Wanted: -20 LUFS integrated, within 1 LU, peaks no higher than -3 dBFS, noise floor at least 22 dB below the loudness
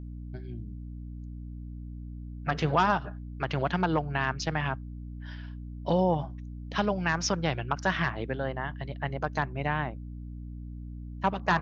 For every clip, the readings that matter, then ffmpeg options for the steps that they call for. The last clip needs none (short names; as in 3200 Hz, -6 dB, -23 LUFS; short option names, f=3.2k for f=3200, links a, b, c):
hum 60 Hz; harmonics up to 300 Hz; hum level -37 dBFS; loudness -30.0 LUFS; peak -11.5 dBFS; loudness target -20.0 LUFS
-> -af "bandreject=f=60:t=h:w=4,bandreject=f=120:t=h:w=4,bandreject=f=180:t=h:w=4,bandreject=f=240:t=h:w=4,bandreject=f=300:t=h:w=4"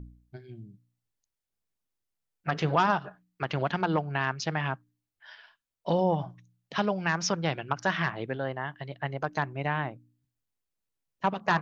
hum none; loudness -30.0 LUFS; peak -12.0 dBFS; loudness target -20.0 LUFS
-> -af "volume=10dB,alimiter=limit=-3dB:level=0:latency=1"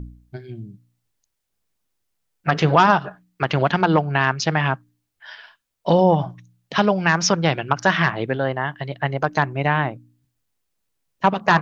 loudness -20.0 LUFS; peak -3.0 dBFS; noise floor -76 dBFS